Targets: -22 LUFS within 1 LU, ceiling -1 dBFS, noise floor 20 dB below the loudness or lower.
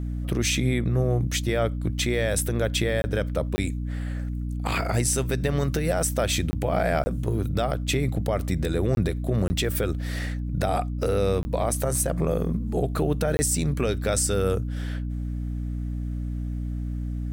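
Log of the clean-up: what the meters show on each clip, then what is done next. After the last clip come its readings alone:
dropouts 8; longest dropout 20 ms; hum 60 Hz; highest harmonic 300 Hz; hum level -27 dBFS; loudness -26.0 LUFS; peak level -10.5 dBFS; loudness target -22.0 LUFS
-> interpolate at 3.02/3.56/6.51/7.04/8.95/9.48/11.43/13.37 s, 20 ms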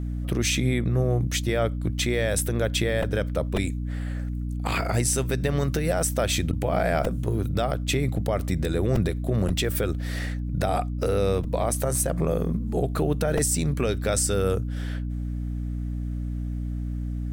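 dropouts 0; hum 60 Hz; highest harmonic 300 Hz; hum level -27 dBFS
-> hum notches 60/120/180/240/300 Hz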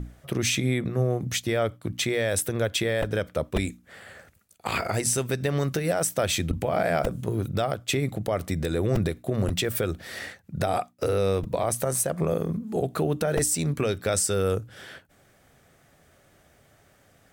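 hum not found; loudness -26.5 LUFS; peak level -12.5 dBFS; loudness target -22.0 LUFS
-> trim +4.5 dB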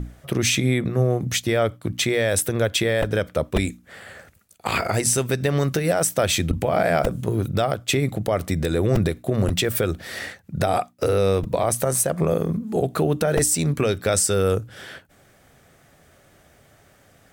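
loudness -22.0 LUFS; peak level -8.0 dBFS; noise floor -56 dBFS

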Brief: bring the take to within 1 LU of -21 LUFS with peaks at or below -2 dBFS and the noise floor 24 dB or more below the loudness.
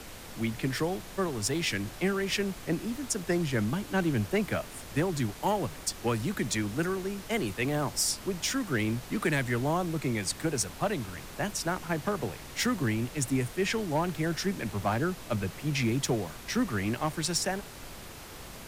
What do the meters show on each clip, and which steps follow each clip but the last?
clipped samples 0.3%; clipping level -20.0 dBFS; noise floor -45 dBFS; noise floor target -55 dBFS; loudness -30.5 LUFS; peak level -20.0 dBFS; loudness target -21.0 LUFS
-> clip repair -20 dBFS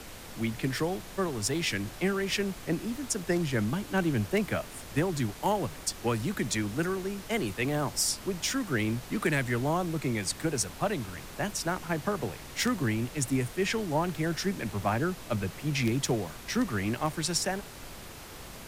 clipped samples 0.0%; noise floor -45 dBFS; noise floor target -55 dBFS
-> noise print and reduce 10 dB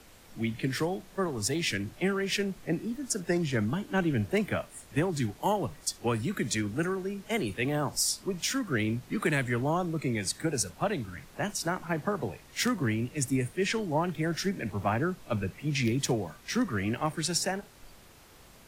noise floor -54 dBFS; noise floor target -55 dBFS
-> noise print and reduce 6 dB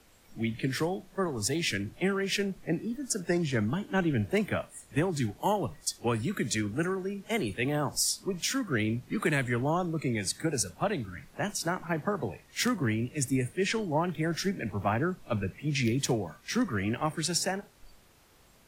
noise floor -60 dBFS; loudness -30.5 LUFS; peak level -12.5 dBFS; loudness target -21.0 LUFS
-> trim +9.5 dB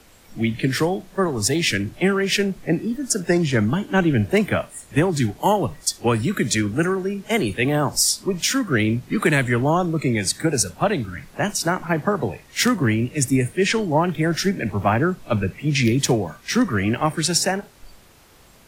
loudness -21.0 LUFS; peak level -3.0 dBFS; noise floor -50 dBFS

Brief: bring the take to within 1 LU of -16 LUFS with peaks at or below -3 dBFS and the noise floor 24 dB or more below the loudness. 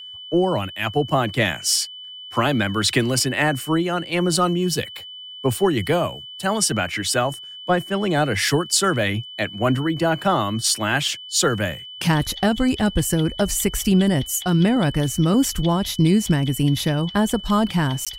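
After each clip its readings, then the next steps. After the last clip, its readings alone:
dropouts 1; longest dropout 16 ms; steady tone 3 kHz; tone level -35 dBFS; loudness -20.5 LUFS; peak level -6.0 dBFS; loudness target -16.0 LUFS
-> interpolate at 18.05 s, 16 ms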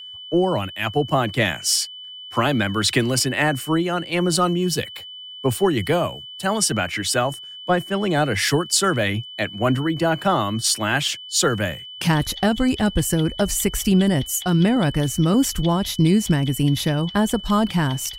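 dropouts 0; steady tone 3 kHz; tone level -35 dBFS
-> band-stop 3 kHz, Q 30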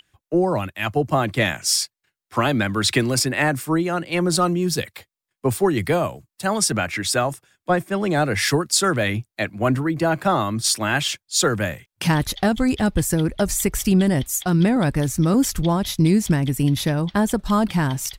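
steady tone not found; loudness -21.0 LUFS; peak level -6.0 dBFS; loudness target -16.0 LUFS
-> trim +5 dB; peak limiter -3 dBFS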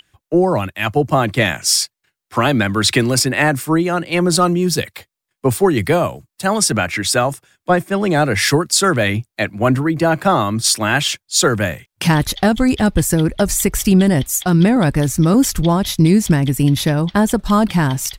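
loudness -16.0 LUFS; peak level -3.0 dBFS; noise floor -82 dBFS

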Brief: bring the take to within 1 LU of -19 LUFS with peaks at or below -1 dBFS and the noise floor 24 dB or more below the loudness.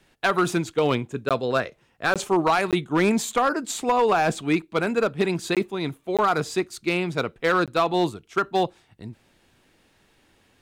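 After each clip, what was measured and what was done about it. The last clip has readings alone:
clipped samples 0.8%; clipping level -13.0 dBFS; dropouts 6; longest dropout 17 ms; loudness -23.5 LUFS; peak level -13.0 dBFS; loudness target -19.0 LUFS
-> clip repair -13 dBFS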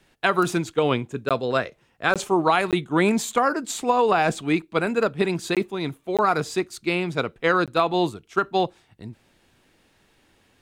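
clipped samples 0.0%; dropouts 6; longest dropout 17 ms
-> interpolate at 1.29/2.14/2.71/5.55/6.17/7.66 s, 17 ms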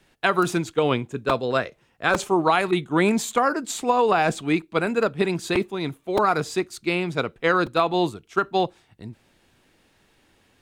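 dropouts 0; loudness -23.0 LUFS; peak level -5.5 dBFS; loudness target -19.0 LUFS
-> trim +4 dB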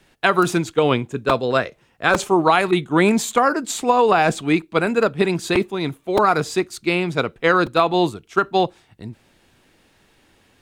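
loudness -19.0 LUFS; peak level -1.5 dBFS; noise floor -59 dBFS

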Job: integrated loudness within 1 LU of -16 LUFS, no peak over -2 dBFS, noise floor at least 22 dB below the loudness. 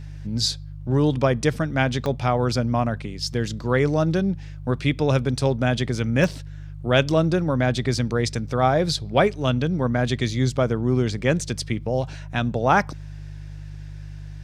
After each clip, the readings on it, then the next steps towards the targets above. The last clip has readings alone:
dropouts 2; longest dropout 1.2 ms; hum 50 Hz; highest harmonic 150 Hz; hum level -34 dBFS; loudness -22.5 LUFS; peak level -4.0 dBFS; loudness target -16.0 LUFS
-> interpolate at 2.06/6.24 s, 1.2 ms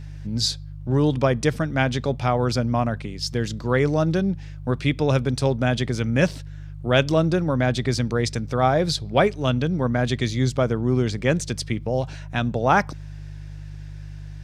dropouts 0; hum 50 Hz; highest harmonic 150 Hz; hum level -34 dBFS
-> de-hum 50 Hz, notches 3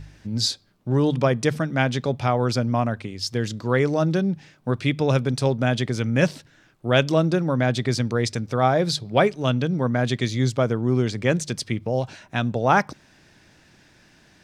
hum not found; loudness -23.0 LUFS; peak level -4.0 dBFS; loudness target -16.0 LUFS
-> trim +7 dB; peak limiter -2 dBFS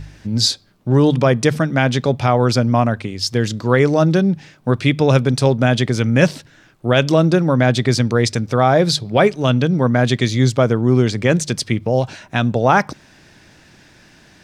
loudness -16.5 LUFS; peak level -2.0 dBFS; noise floor -49 dBFS

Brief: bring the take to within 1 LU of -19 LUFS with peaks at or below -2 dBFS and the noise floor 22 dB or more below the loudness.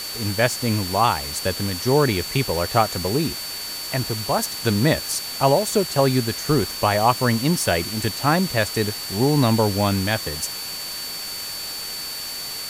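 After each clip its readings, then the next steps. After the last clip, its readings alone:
steady tone 4.5 kHz; tone level -31 dBFS; noise floor -31 dBFS; noise floor target -44 dBFS; loudness -21.5 LUFS; peak level -3.5 dBFS; loudness target -19.0 LUFS
-> band-stop 4.5 kHz, Q 30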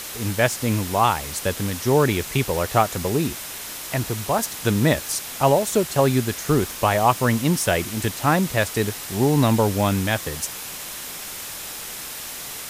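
steady tone not found; noise floor -34 dBFS; noise floor target -44 dBFS
-> noise reduction 10 dB, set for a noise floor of -34 dBFS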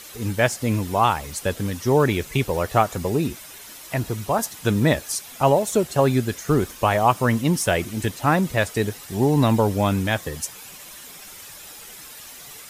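noise floor -41 dBFS; noise floor target -44 dBFS
-> noise reduction 6 dB, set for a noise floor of -41 dBFS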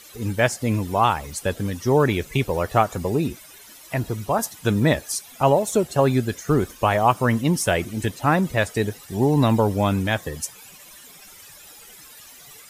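noise floor -46 dBFS; loudness -22.0 LUFS; peak level -4.0 dBFS; loudness target -19.0 LUFS
-> trim +3 dB; peak limiter -2 dBFS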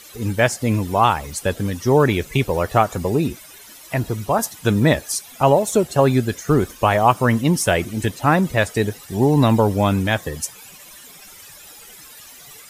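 loudness -19.0 LUFS; peak level -2.0 dBFS; noise floor -43 dBFS

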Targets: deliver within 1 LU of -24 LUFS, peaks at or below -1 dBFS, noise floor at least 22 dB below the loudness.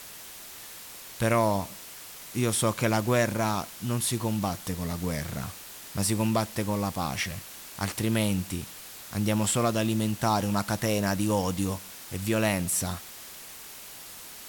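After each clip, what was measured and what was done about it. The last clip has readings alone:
noise floor -44 dBFS; noise floor target -50 dBFS; loudness -28.0 LUFS; peak level -11.5 dBFS; loudness target -24.0 LUFS
-> noise reduction 6 dB, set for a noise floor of -44 dBFS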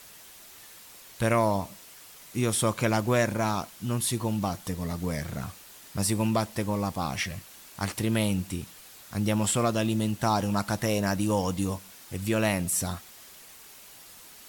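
noise floor -50 dBFS; loudness -28.0 LUFS; peak level -12.0 dBFS; loudness target -24.0 LUFS
-> trim +4 dB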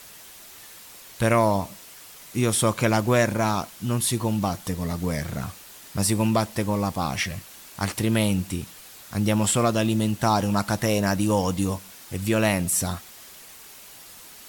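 loudness -24.0 LUFS; peak level -8.0 dBFS; noise floor -46 dBFS

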